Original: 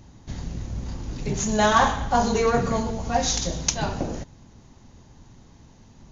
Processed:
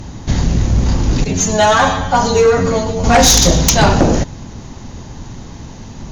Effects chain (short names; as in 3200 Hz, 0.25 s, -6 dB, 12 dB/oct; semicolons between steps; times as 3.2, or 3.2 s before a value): in parallel at 0 dB: limiter -15 dBFS, peak gain reduction 10 dB; 1.24–3.04 on the sum: metallic resonator 88 Hz, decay 0.23 s, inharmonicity 0.002; sine folder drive 11 dB, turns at -2 dBFS; gain -2 dB